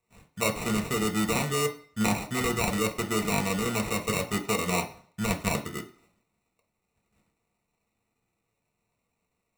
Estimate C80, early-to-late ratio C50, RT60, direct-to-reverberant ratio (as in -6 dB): 18.0 dB, 14.0 dB, 0.50 s, 2.0 dB